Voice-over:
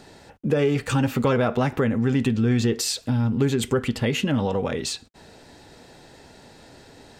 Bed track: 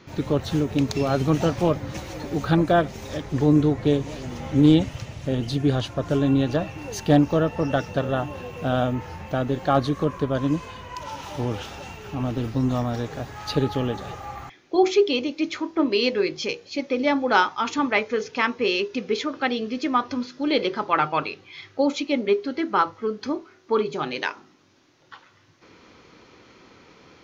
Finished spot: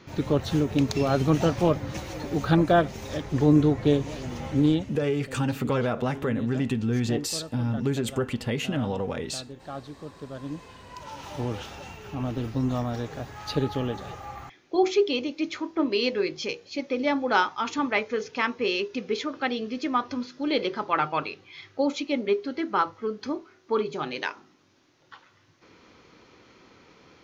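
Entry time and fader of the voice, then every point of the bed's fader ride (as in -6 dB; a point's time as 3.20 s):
4.45 s, -5.0 dB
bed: 4.45 s -1 dB
5.19 s -17.5 dB
10.03 s -17.5 dB
11.33 s -3.5 dB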